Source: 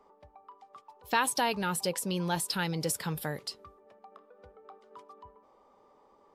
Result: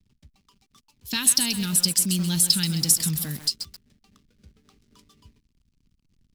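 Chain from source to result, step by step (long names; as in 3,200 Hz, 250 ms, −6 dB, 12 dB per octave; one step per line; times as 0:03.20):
slack as between gear wheels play −50.5 dBFS
drawn EQ curve 240 Hz 0 dB, 520 Hz −24 dB, 790 Hz −25 dB, 5,000 Hz +7 dB
feedback echo at a low word length 132 ms, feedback 35%, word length 7 bits, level −8.5 dB
level +8 dB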